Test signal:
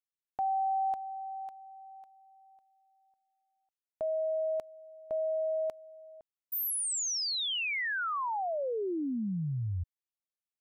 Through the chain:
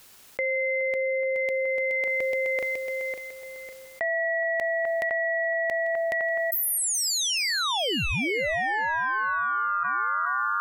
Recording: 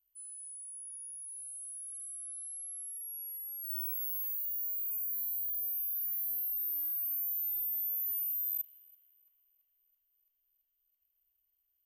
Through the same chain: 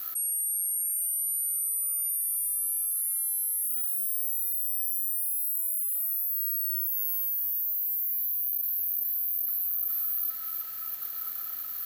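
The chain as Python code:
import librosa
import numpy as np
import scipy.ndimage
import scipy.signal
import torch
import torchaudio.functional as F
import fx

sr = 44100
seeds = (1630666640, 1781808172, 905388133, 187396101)

p1 = x * np.sin(2.0 * np.pi * 1300.0 * np.arange(len(x)) / sr)
p2 = p1 + fx.echo_feedback(p1, sr, ms=422, feedback_pct=43, wet_db=-14.0, dry=0)
p3 = fx.env_flatten(p2, sr, amount_pct=100)
y = p3 * 10.0 ** (6.5 / 20.0)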